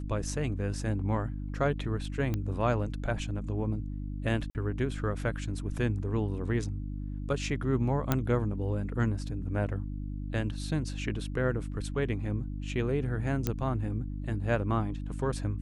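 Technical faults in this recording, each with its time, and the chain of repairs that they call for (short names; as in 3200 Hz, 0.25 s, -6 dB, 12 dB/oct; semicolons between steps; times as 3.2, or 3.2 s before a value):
hum 50 Hz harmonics 6 -36 dBFS
2.34 pop -19 dBFS
4.5–4.55 gap 49 ms
8.12 pop -11 dBFS
13.47 pop -14 dBFS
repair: de-click; de-hum 50 Hz, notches 6; interpolate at 4.5, 49 ms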